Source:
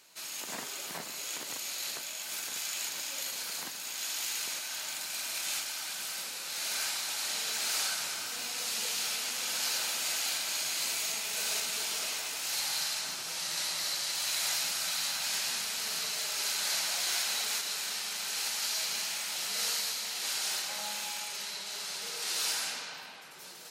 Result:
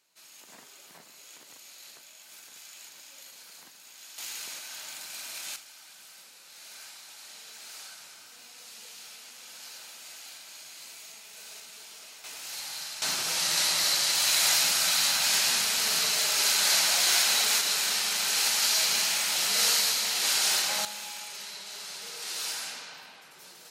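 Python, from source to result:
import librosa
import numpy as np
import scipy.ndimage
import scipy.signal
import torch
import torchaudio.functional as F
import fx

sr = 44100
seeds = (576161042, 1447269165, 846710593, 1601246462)

y = fx.gain(x, sr, db=fx.steps((0.0, -12.0), (4.18, -3.5), (5.56, -13.0), (12.24, -5.0), (13.02, 8.0), (20.85, -2.0)))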